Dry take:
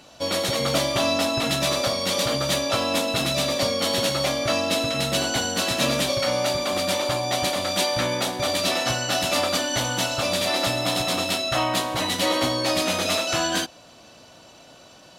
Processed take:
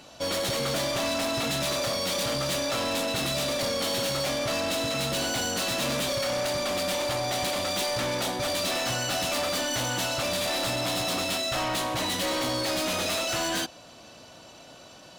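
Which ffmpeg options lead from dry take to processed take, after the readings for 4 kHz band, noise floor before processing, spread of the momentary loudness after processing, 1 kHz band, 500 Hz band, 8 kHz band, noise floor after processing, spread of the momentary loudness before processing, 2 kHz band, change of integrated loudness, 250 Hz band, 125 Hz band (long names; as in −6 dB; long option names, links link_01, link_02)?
−4.5 dB, −49 dBFS, 1 LU, −4.5 dB, −4.5 dB, −3.0 dB, −49 dBFS, 2 LU, −4.0 dB, −4.5 dB, −5.0 dB, −4.5 dB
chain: -af "asoftclip=type=hard:threshold=-26dB"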